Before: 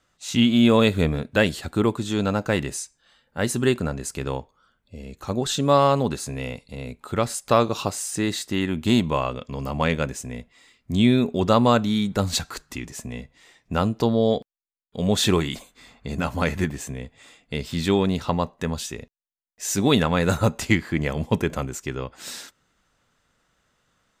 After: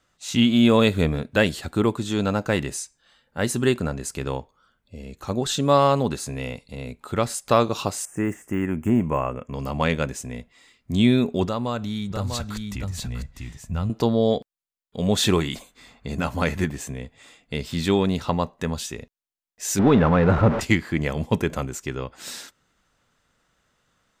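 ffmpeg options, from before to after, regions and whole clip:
-filter_complex "[0:a]asettb=1/sr,asplit=3[a][b][c];[a]atrim=end=8.054[d];[b]atrim=start=8.05:end=9.54,asetpts=PTS-STARTPTS,afade=t=in:d=0.004:c=qsin,afade=t=out:st=1.486:d=0.004:c=qsin,deesser=0.85,asuperstop=centerf=4100:order=4:qfactor=0.89[e];[c]atrim=start=9.536[f];[d][e]acrossfade=d=0.004:c1=hsin:c2=qsin[g];[g][f]acrossfade=d=0.004:c1=qsin:c2=hsin,asettb=1/sr,asplit=3[h][i][j];[h]atrim=end=11.454[k];[i]atrim=start=11.45:end=13.9,asetpts=PTS-STARTPTS,afade=t=in:d=0.004:c=qsin,afade=t=out:st=2.446:d=0.004:c=qsin,aecho=1:1:647:0.376,atrim=end_sample=108045,asubboost=boost=9.5:cutoff=140,acompressor=threshold=-29dB:ratio=2:attack=3.2:release=140:knee=1:detection=peak[l];[j]atrim=start=13.896[m];[k][l]acrossfade=d=0.004:c1=hsin:c2=qsin[n];[n][m]acrossfade=d=0.004:c1=qsin:c2=hsin,asettb=1/sr,asplit=3[o][p][q];[o]atrim=end=19.794[r];[p]atrim=start=19.79:end=20.61,asetpts=PTS-STARTPTS,afade=t=in:d=0.004:c=qsin,afade=t=out:st=0.816:d=0.004:c=qsin,aeval=exprs='val(0)+0.5*0.126*sgn(val(0))':c=same,lowpass=1.5k[s];[q]atrim=start=20.606[t];[r][s]acrossfade=d=0.004:c1=hsin:c2=qsin[u];[u][t]acrossfade=d=0.004:c1=qsin:c2=hsin"

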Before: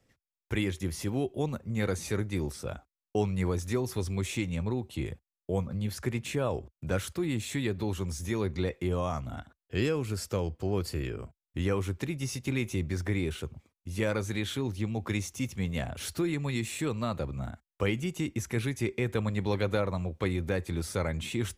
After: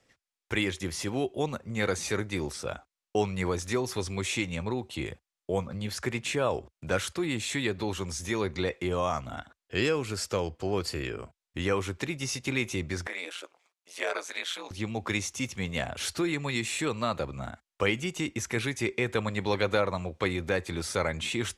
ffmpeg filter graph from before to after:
-filter_complex "[0:a]asettb=1/sr,asplit=3[a][b][c];[a]atrim=end=13.074[d];[b]atrim=start=13.07:end=14.71,asetpts=PTS-STARTPTS,afade=t=in:d=0.004:c=qsin,afade=t=out:st=1.636:d=0.004:c=qsin,highpass=f=490:w=0.5412,highpass=f=490:w=1.3066,aeval=exprs='val(0)*sin(2*PI*88*n/s)':c=same[e];[c]atrim=start=14.706[f];[d][e]acrossfade=d=0.004:c1=hsin:c2=qsin[g];[g][f]acrossfade=d=0.004:c1=qsin:c2=hsin,lowpass=8.7k,lowshelf=f=330:g=-11.5,volume=6.5dB"

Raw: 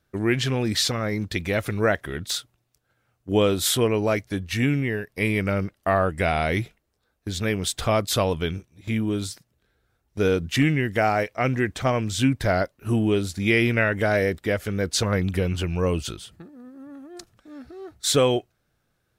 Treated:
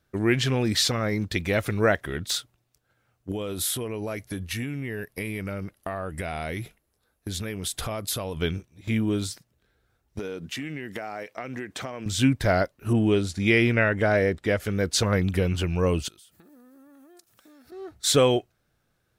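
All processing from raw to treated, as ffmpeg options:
-filter_complex "[0:a]asettb=1/sr,asplit=3[a][b][c];[a]atrim=end=3.314[d];[b]atrim=start=3.31:end=8.37,asetpts=PTS-STARTPTS,afade=t=in:d=0.004:c=qsin,afade=t=out:st=5.056:d=0.004:c=qsin,acompressor=threshold=-27dB:ratio=10:attack=3.2:release=140:knee=1:detection=peak,equalizer=f=11k:w=2.4:g=12[e];[c]atrim=start=8.366[f];[d][e]acrossfade=d=0.004:c1=hsin:c2=qsin[g];[g][f]acrossfade=d=0.004:c1=qsin:c2=hsin,asettb=1/sr,asplit=3[h][i][j];[h]atrim=end=10.194[k];[i]atrim=start=10.19:end=12.06,asetpts=PTS-STARTPTS,afade=t=in:d=0.004:c=qsin,afade=t=out:st=1.866:d=0.004:c=qsin,highpass=190,acompressor=threshold=-29dB:ratio=16:attack=3.2:release=140:knee=1:detection=peak[l];[j]atrim=start=12.056[m];[k][l]acrossfade=d=0.004:c1=hsin:c2=qsin[n];[n][m]acrossfade=d=0.004:c1=qsin:c2=hsin,asettb=1/sr,asplit=3[o][p][q];[o]atrim=end=12.934[r];[p]atrim=start=12.93:end=14.6,asetpts=PTS-STARTPTS,afade=t=in:d=0.004:c=qsin,afade=t=out:st=1.666:d=0.004:c=qsin,lowpass=9.8k,adynamicequalizer=threshold=0.02:dfrequency=2400:dqfactor=0.7:tfrequency=2400:tqfactor=0.7:attack=5:release=100:ratio=0.375:range=3:mode=cutabove:tftype=highshelf[s];[q]atrim=start=14.596[t];[r][s]acrossfade=d=0.004:c1=hsin:c2=qsin[u];[u][t]acrossfade=d=0.004:c1=qsin:c2=hsin,asettb=1/sr,asplit=3[v][w][x];[v]atrim=end=16.084[y];[w]atrim=start=16.08:end=17.72,asetpts=PTS-STARTPTS,afade=t=in:d=0.004:c=qsin,afade=t=out:st=1.636:d=0.004:c=qsin,aemphasis=mode=production:type=bsi,acompressor=threshold=-49dB:ratio=16:attack=3.2:release=140:knee=1:detection=peak[z];[x]atrim=start=17.716[aa];[y][z]acrossfade=d=0.004:c1=hsin:c2=qsin[ab];[ab][aa]acrossfade=d=0.004:c1=qsin:c2=hsin"

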